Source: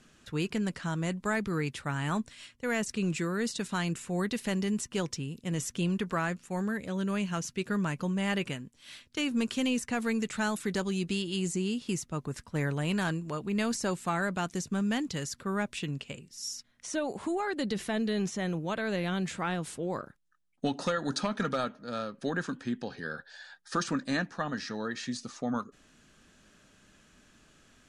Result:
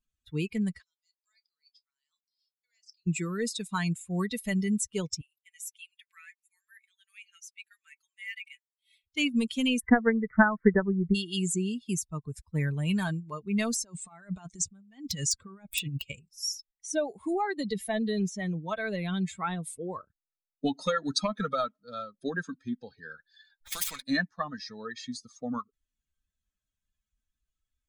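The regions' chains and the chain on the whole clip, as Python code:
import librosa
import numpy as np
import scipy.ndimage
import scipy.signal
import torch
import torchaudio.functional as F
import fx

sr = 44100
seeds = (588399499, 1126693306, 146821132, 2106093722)

y = fx.chain(x, sr, fx.bandpass_q(hz=4900.0, q=7.1),
    fx.doubler(ms=29.0, db=-10.5), at=(0.82, 3.07))
y = fx.chain(y, sr, fx.ladder_highpass(hz=1700.0, resonance_pct=40),
    fx.high_shelf(hz=6900.0, db=5.5),
    fx.overload_stage(gain_db=33.0), at=(5.21, 9.04))
y = fx.chain(y, sr, fx.steep_lowpass(hz=2000.0, slope=72),
    fx.transient(attack_db=9, sustain_db=3), at=(9.8, 11.15))
y = fx.chain(y, sr, fx.steep_lowpass(hz=9600.0, slope=72),
    fx.over_compress(threshold_db=-35.0, ratio=-0.5),
    fx.overflow_wrap(gain_db=21.5), at=(13.82, 16.3))
y = fx.chain(y, sr, fx.median_filter(points=9),
    fx.high_shelf(hz=7400.0, db=-8.0),
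    fx.spectral_comp(ratio=4.0), at=(23.61, 24.02))
y = fx.bin_expand(y, sr, power=2.0)
y = fx.high_shelf(y, sr, hz=8500.0, db=7.5)
y = y + 0.33 * np.pad(y, (int(4.6 * sr / 1000.0), 0))[:len(y)]
y = y * 10.0 ** (6.5 / 20.0)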